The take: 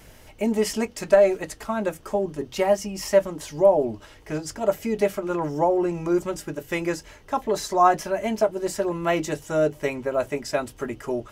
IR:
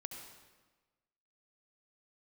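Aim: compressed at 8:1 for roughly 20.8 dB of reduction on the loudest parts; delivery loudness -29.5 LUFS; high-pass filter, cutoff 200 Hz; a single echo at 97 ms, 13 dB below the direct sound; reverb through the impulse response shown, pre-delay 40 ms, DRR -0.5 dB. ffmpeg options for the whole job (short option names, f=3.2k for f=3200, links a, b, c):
-filter_complex "[0:a]highpass=200,acompressor=threshold=-34dB:ratio=8,aecho=1:1:97:0.224,asplit=2[a][b];[1:a]atrim=start_sample=2205,adelay=40[c];[b][c]afir=irnorm=-1:irlink=0,volume=3dB[d];[a][d]amix=inputs=2:normalize=0,volume=5.5dB"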